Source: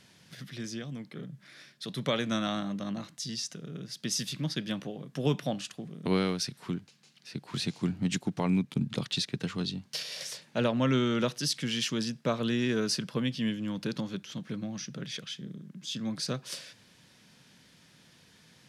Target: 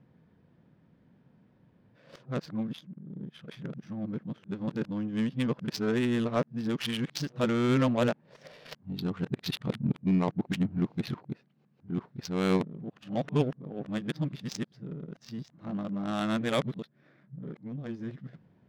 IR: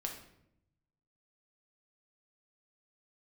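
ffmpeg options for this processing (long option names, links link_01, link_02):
-af "areverse,adynamicsmooth=sensitivity=3.5:basefreq=760,volume=1.5dB"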